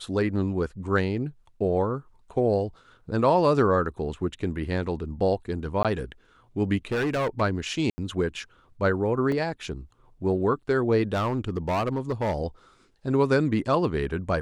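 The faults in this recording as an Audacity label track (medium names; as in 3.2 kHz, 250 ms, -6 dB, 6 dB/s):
5.830000	5.850000	dropout 17 ms
6.920000	7.420000	clipped -22.5 dBFS
7.900000	7.980000	dropout 80 ms
9.320000	9.320000	dropout 2.5 ms
11.130000	12.360000	clipped -21.5 dBFS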